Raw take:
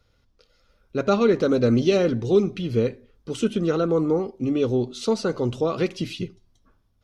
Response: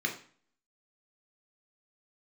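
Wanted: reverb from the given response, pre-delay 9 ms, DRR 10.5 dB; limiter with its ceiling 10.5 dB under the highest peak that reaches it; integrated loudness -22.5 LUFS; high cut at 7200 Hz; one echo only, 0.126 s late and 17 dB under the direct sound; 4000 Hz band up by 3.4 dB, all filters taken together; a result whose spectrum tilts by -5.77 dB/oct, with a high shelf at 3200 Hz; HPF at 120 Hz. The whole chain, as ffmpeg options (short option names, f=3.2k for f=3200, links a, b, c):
-filter_complex "[0:a]highpass=120,lowpass=7.2k,highshelf=f=3.2k:g=-4.5,equalizer=f=4k:t=o:g=7.5,alimiter=limit=-17.5dB:level=0:latency=1,aecho=1:1:126:0.141,asplit=2[a][b];[1:a]atrim=start_sample=2205,adelay=9[c];[b][c]afir=irnorm=-1:irlink=0,volume=-17dB[d];[a][d]amix=inputs=2:normalize=0,volume=4.5dB"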